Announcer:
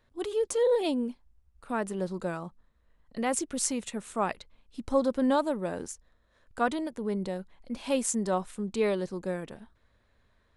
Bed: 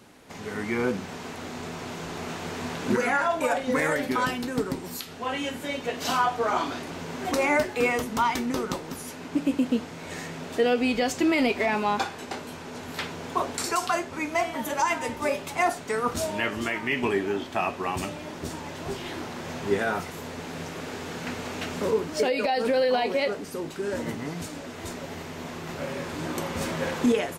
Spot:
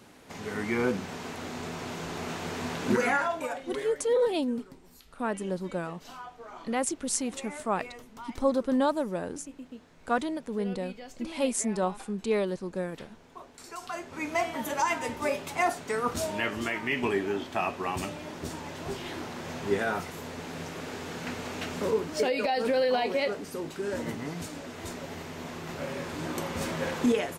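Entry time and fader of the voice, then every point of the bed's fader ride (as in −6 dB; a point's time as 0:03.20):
3.50 s, 0.0 dB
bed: 0:03.11 −1 dB
0:04.01 −20 dB
0:13.55 −20 dB
0:14.28 −2.5 dB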